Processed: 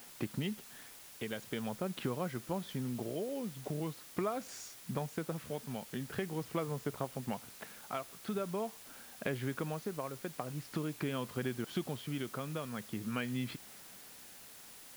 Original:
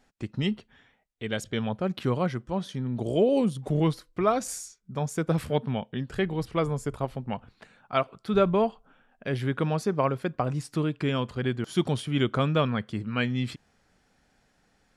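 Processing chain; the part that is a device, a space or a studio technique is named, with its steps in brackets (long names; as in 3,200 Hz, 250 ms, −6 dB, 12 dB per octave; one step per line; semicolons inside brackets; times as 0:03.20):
medium wave at night (band-pass filter 140–3,800 Hz; downward compressor 6 to 1, threshold −39 dBFS, peak gain reduction 20.5 dB; amplitude tremolo 0.44 Hz, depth 39%; steady tone 10,000 Hz −69 dBFS; white noise bed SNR 14 dB)
level +5.5 dB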